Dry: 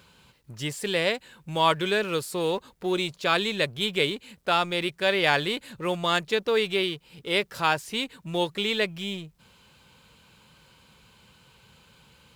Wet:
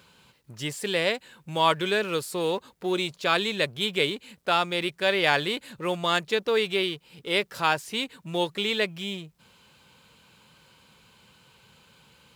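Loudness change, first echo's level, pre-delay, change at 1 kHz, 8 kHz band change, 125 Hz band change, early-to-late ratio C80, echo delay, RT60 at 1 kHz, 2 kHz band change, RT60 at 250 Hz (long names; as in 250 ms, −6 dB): 0.0 dB, no echo audible, no reverb audible, 0.0 dB, 0.0 dB, −1.5 dB, no reverb audible, no echo audible, no reverb audible, 0.0 dB, no reverb audible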